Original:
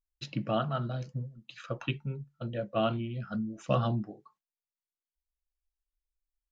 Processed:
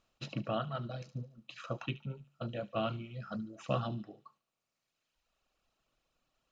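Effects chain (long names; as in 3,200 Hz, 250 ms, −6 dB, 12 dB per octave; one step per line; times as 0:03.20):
compressor on every frequency bin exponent 0.6
reverb reduction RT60 1.6 s
delay with a high-pass on its return 73 ms, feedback 49%, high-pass 3,000 Hz, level −12.5 dB
level −6.5 dB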